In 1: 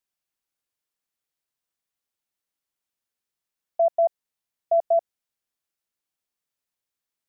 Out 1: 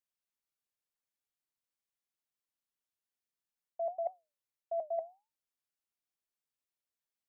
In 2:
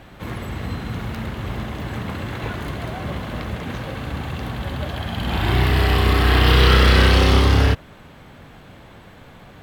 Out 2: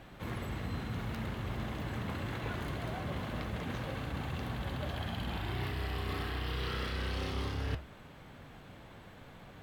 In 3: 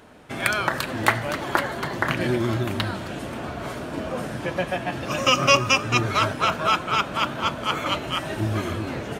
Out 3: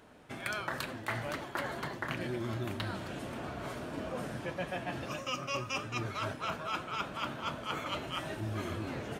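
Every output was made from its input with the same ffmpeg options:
-af "flanger=delay=5.9:depth=2.7:regen=-84:speed=1.7:shape=triangular,areverse,acompressor=threshold=0.0398:ratio=16,areverse,volume=0.631"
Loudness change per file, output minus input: -15.0 LU, -18.0 LU, -13.5 LU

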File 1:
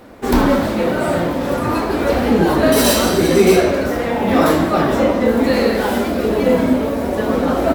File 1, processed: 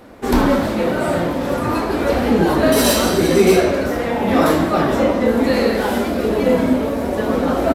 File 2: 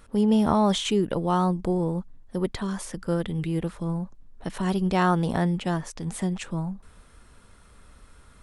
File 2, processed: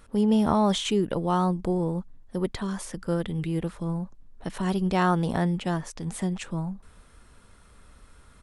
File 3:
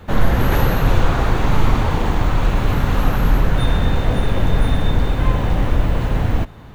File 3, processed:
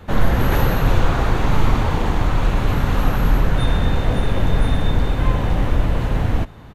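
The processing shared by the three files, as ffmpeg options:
-af "aresample=32000,aresample=44100,volume=0.891"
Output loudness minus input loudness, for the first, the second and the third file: -1.0 LU, -1.0 LU, -1.0 LU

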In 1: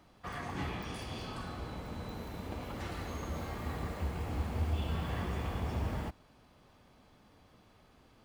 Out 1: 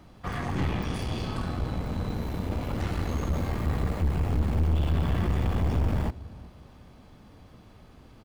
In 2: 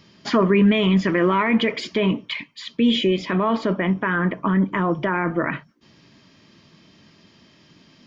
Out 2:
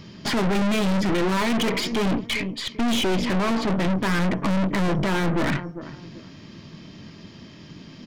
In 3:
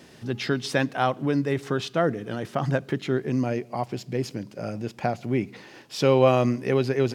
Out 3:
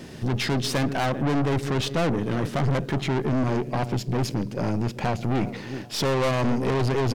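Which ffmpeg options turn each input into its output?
-filter_complex "[0:a]lowshelf=f=310:g=8.5,asplit=2[s0][s1];[s1]adelay=393,lowpass=f=1200:p=1,volume=0.0891,asplit=2[s2][s3];[s3]adelay=393,lowpass=f=1200:p=1,volume=0.31[s4];[s0][s2][s4]amix=inputs=3:normalize=0,aeval=exprs='(tanh(28.2*val(0)+0.55)-tanh(0.55))/28.2':c=same,volume=2.51"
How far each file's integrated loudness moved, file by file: +9.5 LU, -2.5 LU, 0.0 LU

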